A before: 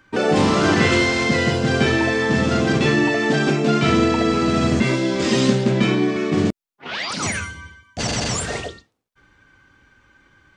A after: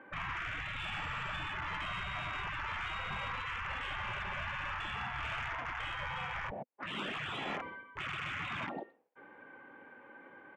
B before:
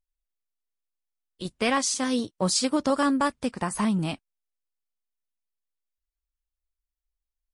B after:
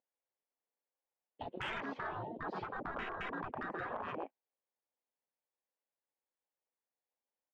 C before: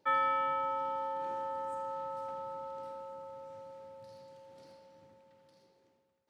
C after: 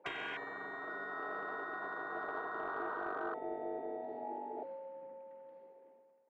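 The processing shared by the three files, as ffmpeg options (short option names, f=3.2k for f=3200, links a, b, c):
-filter_complex "[0:a]highpass=210,equalizer=f=240:t=q:w=4:g=4,equalizer=f=510:t=q:w=4:g=7,equalizer=f=840:t=q:w=4:g=4,equalizer=f=1.3k:t=q:w=4:g=-7,lowpass=f=2.7k:w=0.5412,lowpass=f=2.7k:w=1.3066,asplit=2[a][b];[b]adelay=120,highpass=300,lowpass=3.4k,asoftclip=type=hard:threshold=-10.5dB,volume=-16dB[c];[a][c]amix=inputs=2:normalize=0,asplit=2[d][e];[e]highpass=f=720:p=1,volume=20dB,asoftclip=type=tanh:threshold=-1.5dB[f];[d][f]amix=inputs=2:normalize=0,lowpass=f=1.2k:p=1,volume=-6dB,afwtdn=0.0501,acompressor=threshold=-28dB:ratio=5,afftfilt=real='re*lt(hypot(re,im),0.0282)':imag='im*lt(hypot(re,im),0.0282)':win_size=1024:overlap=0.75,asoftclip=type=tanh:threshold=-39.5dB,highshelf=f=2.1k:g=-9,volume=12dB"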